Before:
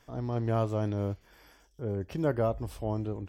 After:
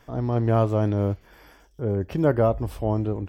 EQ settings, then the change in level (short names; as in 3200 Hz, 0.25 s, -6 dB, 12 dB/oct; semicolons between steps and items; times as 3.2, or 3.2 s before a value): bell 6700 Hz -6.5 dB 2.2 oct; +8.0 dB